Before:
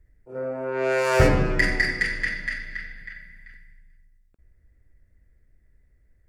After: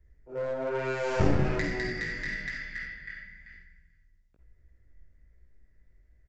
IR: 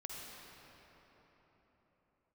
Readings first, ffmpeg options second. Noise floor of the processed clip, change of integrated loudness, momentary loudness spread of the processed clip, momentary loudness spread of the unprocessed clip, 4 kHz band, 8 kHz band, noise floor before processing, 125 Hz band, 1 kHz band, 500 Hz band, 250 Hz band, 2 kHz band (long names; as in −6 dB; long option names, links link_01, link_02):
−64 dBFS, −8.0 dB, 16 LU, 20 LU, −8.5 dB, −10.5 dB, −62 dBFS, −5.0 dB, −7.0 dB, −6.5 dB, −3.5 dB, −9.0 dB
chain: -filter_complex "[0:a]acrossover=split=460[link_01][link_02];[link_02]acompressor=threshold=-28dB:ratio=10[link_03];[link_01][link_03]amix=inputs=2:normalize=0,flanger=delay=16:depth=5.4:speed=1.1,aresample=16000,aeval=exprs='clip(val(0),-1,0.0316)':channel_layout=same,aresample=44100[link_04];[1:a]atrim=start_sample=2205,atrim=end_sample=3969[link_05];[link_04][link_05]afir=irnorm=-1:irlink=0,volume=6.5dB"